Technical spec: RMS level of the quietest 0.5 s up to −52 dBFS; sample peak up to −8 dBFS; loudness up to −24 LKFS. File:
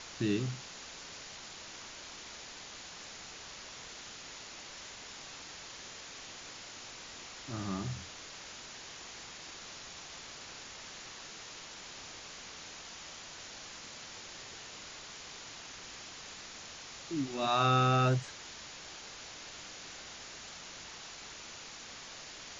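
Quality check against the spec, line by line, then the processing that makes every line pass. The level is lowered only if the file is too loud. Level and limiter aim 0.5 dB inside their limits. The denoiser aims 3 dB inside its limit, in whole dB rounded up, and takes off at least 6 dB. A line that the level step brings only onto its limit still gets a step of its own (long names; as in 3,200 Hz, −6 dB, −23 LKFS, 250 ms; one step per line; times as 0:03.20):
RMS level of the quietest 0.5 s −48 dBFS: out of spec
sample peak −15.0 dBFS: in spec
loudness −39.5 LKFS: in spec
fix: broadband denoise 7 dB, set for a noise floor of −48 dBFS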